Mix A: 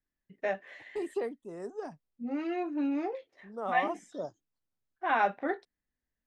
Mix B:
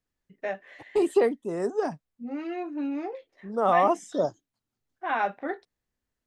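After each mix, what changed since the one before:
second voice +12.0 dB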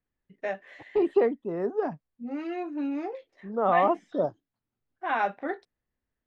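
second voice: add high-frequency loss of the air 340 metres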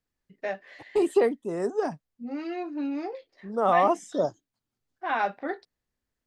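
first voice: add parametric band 4,700 Hz +12 dB 0.38 octaves
second voice: remove high-frequency loss of the air 340 metres

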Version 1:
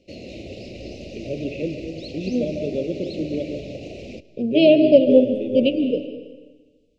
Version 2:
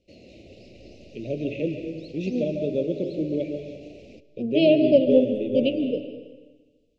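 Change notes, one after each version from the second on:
second voice −4.5 dB
background −11.5 dB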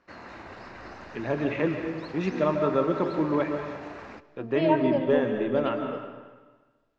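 second voice −11.5 dB
master: remove elliptic band-stop filter 580–2,600 Hz, stop band 40 dB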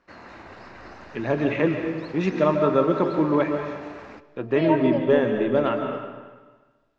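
first voice +4.5 dB

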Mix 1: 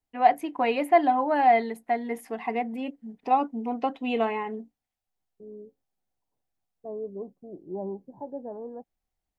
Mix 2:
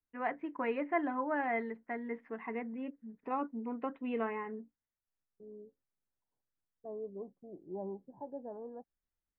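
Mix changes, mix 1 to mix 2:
first voice: add parametric band 750 Hz −14 dB 0.32 octaves
master: add transistor ladder low-pass 2,100 Hz, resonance 35%

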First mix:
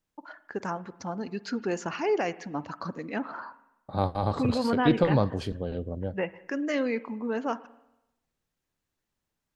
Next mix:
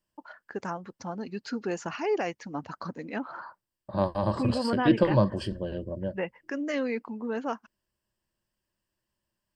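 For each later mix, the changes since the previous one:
second voice: add EQ curve with evenly spaced ripples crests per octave 1.3, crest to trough 12 dB
reverb: off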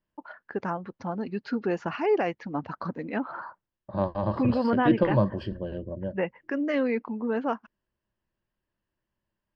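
first voice +4.5 dB
master: add high-frequency loss of the air 260 metres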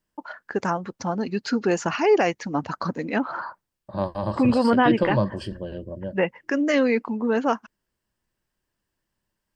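first voice +5.0 dB
master: remove high-frequency loss of the air 260 metres

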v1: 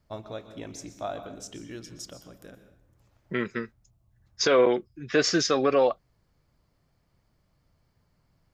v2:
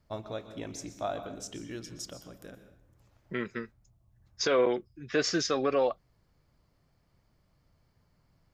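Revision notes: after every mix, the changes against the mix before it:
second voice −5.0 dB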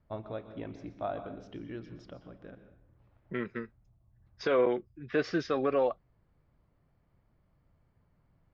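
first voice: add high-frequency loss of the air 110 metres
master: add high-frequency loss of the air 310 metres

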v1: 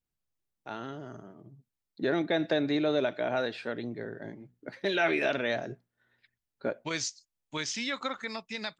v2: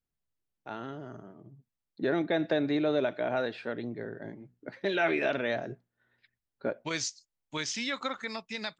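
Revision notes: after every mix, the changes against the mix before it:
first voice: add low-pass filter 3,100 Hz 6 dB per octave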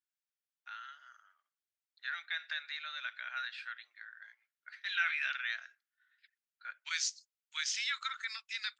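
master: add Chebyshev high-pass filter 1,400 Hz, order 4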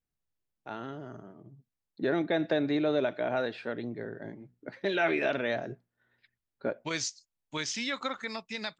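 master: remove Chebyshev high-pass filter 1,400 Hz, order 4

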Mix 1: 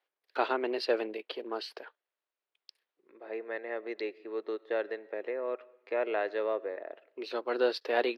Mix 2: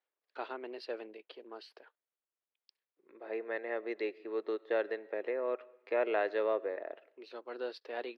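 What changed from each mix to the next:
first voice −11.5 dB
master: add high-shelf EQ 9,400 Hz −8 dB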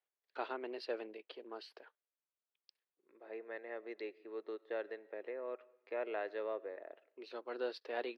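second voice −8.5 dB

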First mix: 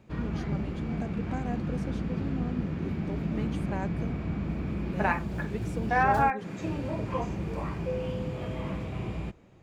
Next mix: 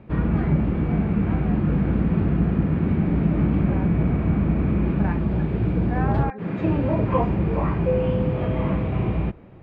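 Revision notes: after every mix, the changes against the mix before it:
second voice −4.5 dB
background +11.5 dB
master: add high-frequency loss of the air 450 metres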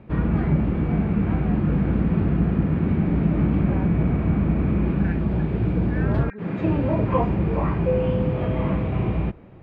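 second voice: add linear-phase brick-wall high-pass 1,300 Hz

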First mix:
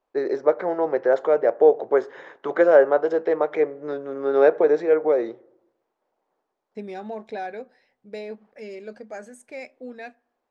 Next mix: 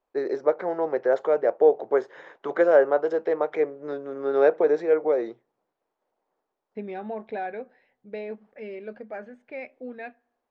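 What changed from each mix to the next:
first voice: send off
second voice: add low-pass filter 3,200 Hz 24 dB per octave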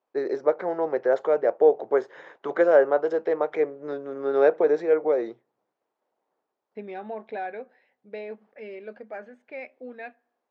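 second voice: add high-pass filter 310 Hz 6 dB per octave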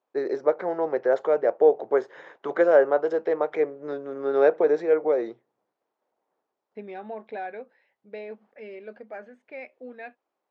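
reverb: off

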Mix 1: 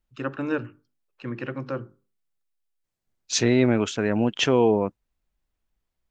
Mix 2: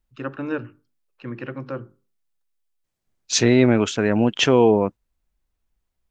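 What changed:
first voice: add high-frequency loss of the air 79 metres
second voice +4.0 dB

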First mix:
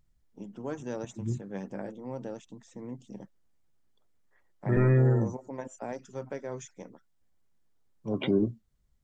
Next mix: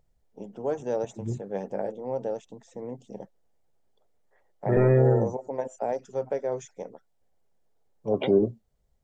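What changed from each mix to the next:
master: add flat-topped bell 590 Hz +10 dB 1.3 octaves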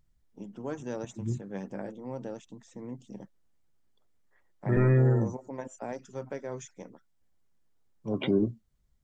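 master: add flat-topped bell 590 Hz −10 dB 1.3 octaves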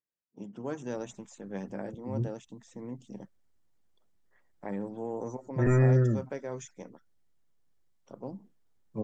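second voice: entry +0.90 s

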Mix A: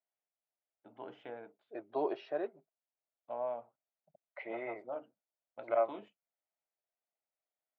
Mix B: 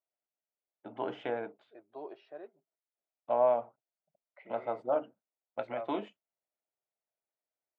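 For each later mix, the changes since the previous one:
first voice +11.5 dB
second voice −10.5 dB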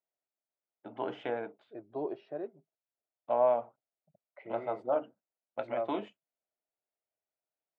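second voice: remove high-pass filter 1,100 Hz 6 dB per octave

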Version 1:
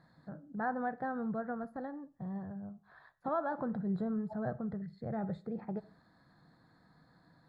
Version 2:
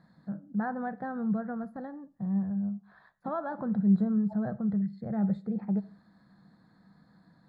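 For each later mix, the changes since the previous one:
master: add parametric band 200 Hz +13.5 dB 0.32 octaves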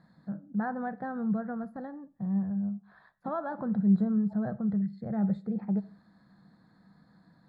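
second voice −8.0 dB

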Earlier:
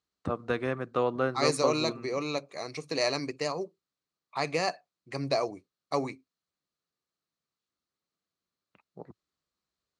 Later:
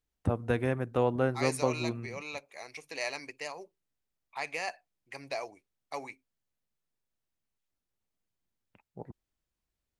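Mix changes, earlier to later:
second voice: add resonant band-pass 2,600 Hz, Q 0.69
master: remove loudspeaker in its box 110–7,800 Hz, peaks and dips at 110 Hz −9 dB, 230 Hz −3 dB, 850 Hz −4 dB, 1,200 Hz +9 dB, 4,200 Hz +9 dB

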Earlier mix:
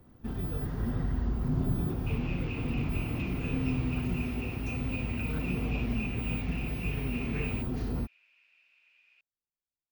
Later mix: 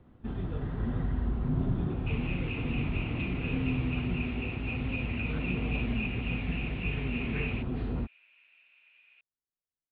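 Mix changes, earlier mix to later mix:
second sound +3.5 dB
master: add Butterworth low-pass 3,800 Hz 48 dB per octave

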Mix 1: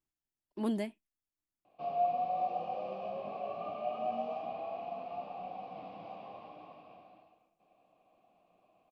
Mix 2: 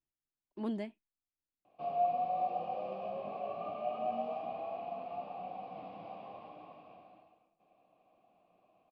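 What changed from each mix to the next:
speech −3.5 dB
master: add high-frequency loss of the air 100 metres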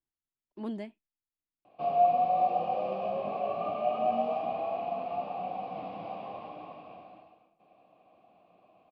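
background +7.5 dB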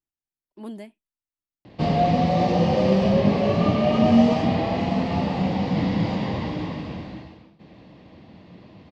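background: remove formant filter a
master: remove high-frequency loss of the air 100 metres

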